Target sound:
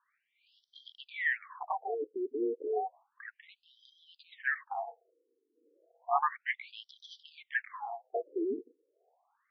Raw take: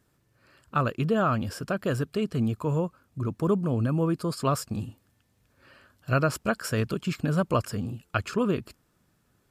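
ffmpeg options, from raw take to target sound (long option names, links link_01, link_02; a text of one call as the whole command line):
ffmpeg -i in.wav -filter_complex "[0:a]aeval=exprs='val(0)*sin(2*PI*580*n/s)':channel_layout=same,acrossover=split=3100[link_01][link_02];[link_02]acompressor=threshold=-54dB:ratio=4:attack=1:release=60[link_03];[link_01][link_03]amix=inputs=2:normalize=0,acrossover=split=130|2500[link_04][link_05][link_06];[link_05]crystalizer=i=6:c=0[link_07];[link_04][link_07][link_06]amix=inputs=3:normalize=0,afftfilt=real='re*between(b*sr/1024,330*pow(4400/330,0.5+0.5*sin(2*PI*0.32*pts/sr))/1.41,330*pow(4400/330,0.5+0.5*sin(2*PI*0.32*pts/sr))*1.41)':imag='im*between(b*sr/1024,330*pow(4400/330,0.5+0.5*sin(2*PI*0.32*pts/sr))/1.41,330*pow(4400/330,0.5+0.5*sin(2*PI*0.32*pts/sr))*1.41)':win_size=1024:overlap=0.75" out.wav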